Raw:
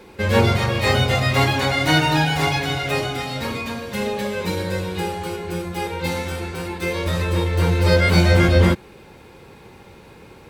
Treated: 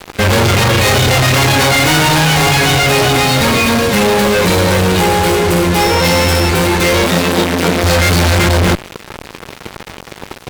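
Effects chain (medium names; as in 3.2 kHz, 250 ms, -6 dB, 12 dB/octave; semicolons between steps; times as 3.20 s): fuzz box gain 37 dB, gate -40 dBFS; 5.79–6.48 s: whistle 5.4 kHz -25 dBFS; 7.03–7.84 s: resonant low shelf 150 Hz -9 dB, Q 3; trim +3.5 dB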